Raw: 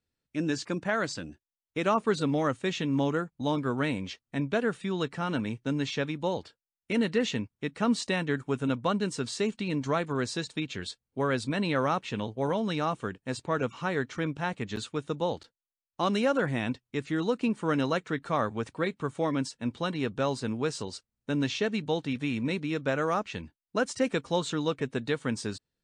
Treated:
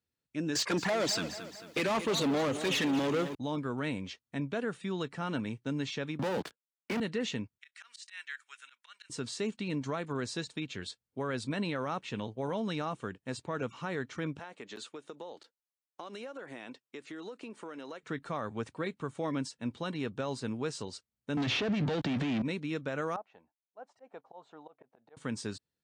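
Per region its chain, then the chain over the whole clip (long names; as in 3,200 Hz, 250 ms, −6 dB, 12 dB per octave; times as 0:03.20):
0:00.55–0:03.35: flanger swept by the level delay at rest 3.6 ms, full sweep at −25 dBFS + mid-hump overdrive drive 27 dB, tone 7,000 Hz, clips at −15.5 dBFS + feedback echo at a low word length 222 ms, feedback 55%, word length 8 bits, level −13 dB
0:06.19–0:07.00: Chebyshev band-pass filter 180–2,500 Hz + leveller curve on the samples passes 5 + multiband upward and downward compressor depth 40%
0:07.58–0:09.10: Chebyshev high-pass filter 1,700 Hz, order 3 + volume swells 141 ms
0:14.39–0:18.03: Chebyshev high-pass filter 380 Hz + downward compressor 10 to 1, threshold −35 dBFS
0:21.37–0:22.42: leveller curve on the samples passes 5 + high-frequency loss of the air 150 metres + multiband upward and downward compressor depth 70%
0:23.16–0:25.17: volume swells 139 ms + resonant band-pass 750 Hz, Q 4.5
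whole clip: high-pass filter 63 Hz; brickwall limiter −20 dBFS; level −4 dB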